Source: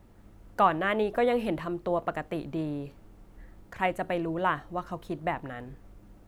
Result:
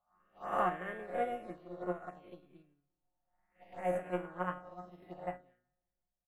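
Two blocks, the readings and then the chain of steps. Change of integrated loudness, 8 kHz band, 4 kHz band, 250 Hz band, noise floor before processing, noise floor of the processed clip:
-9.0 dB, no reading, under -15 dB, -12.5 dB, -55 dBFS, under -85 dBFS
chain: reverse spectral sustain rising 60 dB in 1.51 s; band-stop 960 Hz, Q 8.6; feedback comb 180 Hz, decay 0.77 s, harmonics all, mix 90%; touch-sensitive phaser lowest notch 270 Hz, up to 4.3 kHz, full sweep at -35.5 dBFS; on a send: feedback delay 188 ms, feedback 56%, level -18 dB; on the sum: upward expansion 2.5:1, over -56 dBFS; trim +6.5 dB

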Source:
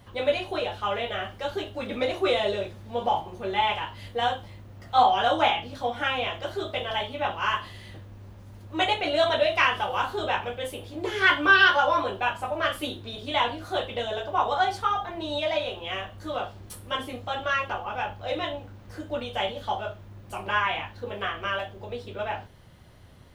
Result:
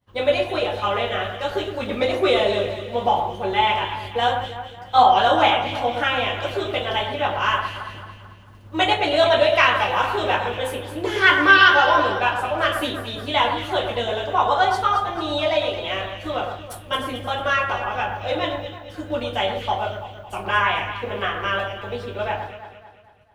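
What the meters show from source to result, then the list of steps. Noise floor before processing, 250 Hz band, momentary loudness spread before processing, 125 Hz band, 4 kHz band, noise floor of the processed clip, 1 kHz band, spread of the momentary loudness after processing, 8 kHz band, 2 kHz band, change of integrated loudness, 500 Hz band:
-47 dBFS, +6.0 dB, 14 LU, +6.5 dB, +5.5 dB, -43 dBFS, +6.0 dB, 13 LU, +5.0 dB, +5.5 dB, +6.0 dB, +6.0 dB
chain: expander -38 dBFS; echo whose repeats swap between lows and highs 111 ms, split 2 kHz, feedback 67%, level -6 dB; trim +5 dB

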